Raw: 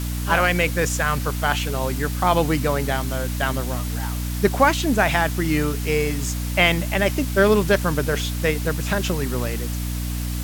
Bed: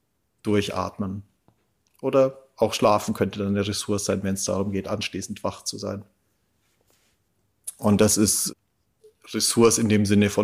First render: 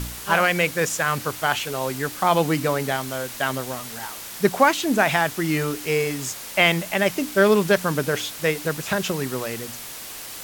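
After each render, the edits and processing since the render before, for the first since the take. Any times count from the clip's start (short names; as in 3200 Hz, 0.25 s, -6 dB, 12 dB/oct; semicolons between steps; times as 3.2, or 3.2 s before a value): de-hum 60 Hz, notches 5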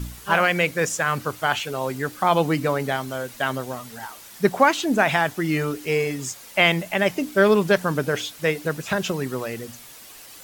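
denoiser 9 dB, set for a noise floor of -36 dBFS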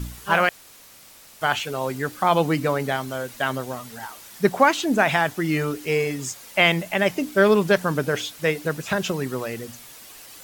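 0.49–1.41 room tone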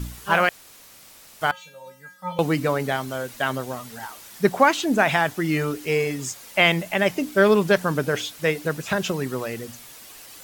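1.51–2.39 resonator 180 Hz, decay 0.33 s, harmonics odd, mix 100%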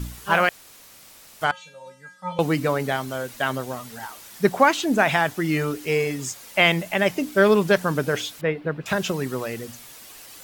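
1.44–2.4 LPF 9600 Hz 24 dB/oct; 8.41–8.86 air absorption 430 m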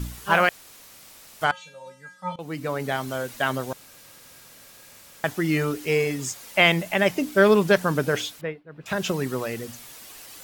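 2.36–3.09 fade in, from -20 dB; 3.73–5.24 room tone; 8.22–9.09 dip -22.5 dB, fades 0.42 s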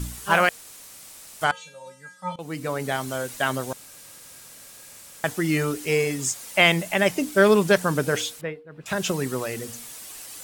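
bell 8800 Hz +7.5 dB 1 oct; de-hum 234.9 Hz, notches 2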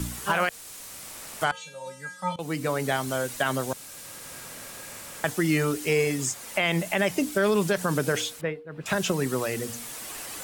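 limiter -13 dBFS, peak gain reduction 10 dB; three-band squash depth 40%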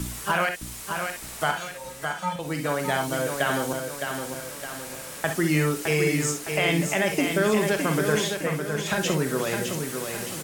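on a send: feedback echo 0.612 s, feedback 45%, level -6 dB; on the sum: non-linear reverb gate 80 ms rising, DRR 5.5 dB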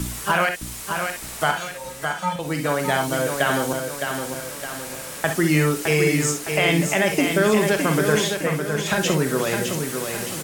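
gain +4 dB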